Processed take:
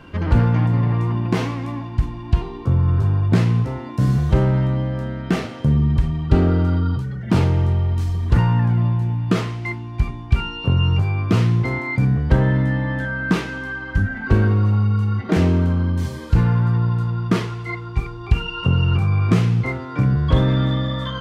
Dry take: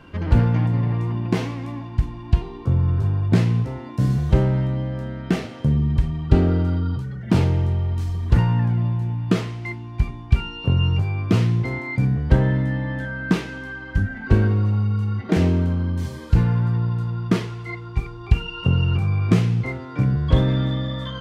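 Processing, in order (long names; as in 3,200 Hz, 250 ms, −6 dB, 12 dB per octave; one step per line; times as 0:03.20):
dynamic equaliser 1,200 Hz, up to +4 dB, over −43 dBFS, Q 1.8
in parallel at −0.5 dB: brickwall limiter −14.5 dBFS, peak gain reduction 11 dB
on the sum: level −2.5 dB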